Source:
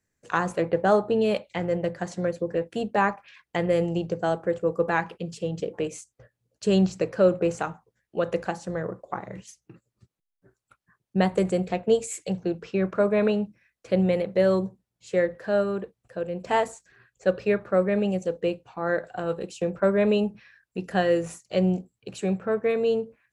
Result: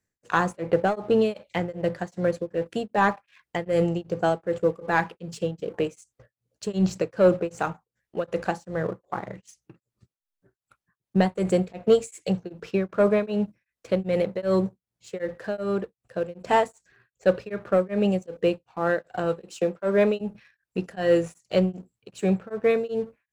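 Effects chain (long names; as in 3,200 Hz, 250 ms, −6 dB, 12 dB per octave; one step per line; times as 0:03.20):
0:19.48–0:20.21: high-pass filter 210 Hz 12 dB per octave
leveller curve on the samples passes 1
tremolo along a rectified sine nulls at 2.6 Hz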